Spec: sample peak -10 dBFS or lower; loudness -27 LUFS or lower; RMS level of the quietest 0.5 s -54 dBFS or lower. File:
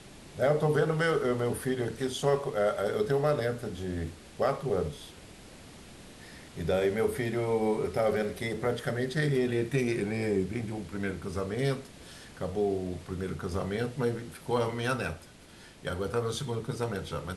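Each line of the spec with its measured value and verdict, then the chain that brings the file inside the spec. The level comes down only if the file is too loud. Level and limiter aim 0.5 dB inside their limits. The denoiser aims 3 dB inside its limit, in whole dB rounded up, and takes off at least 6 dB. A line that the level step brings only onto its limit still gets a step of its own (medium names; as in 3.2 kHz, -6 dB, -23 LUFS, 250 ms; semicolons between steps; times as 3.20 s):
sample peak -14.5 dBFS: pass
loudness -30.5 LUFS: pass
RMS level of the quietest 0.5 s -52 dBFS: fail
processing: noise reduction 6 dB, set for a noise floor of -52 dBFS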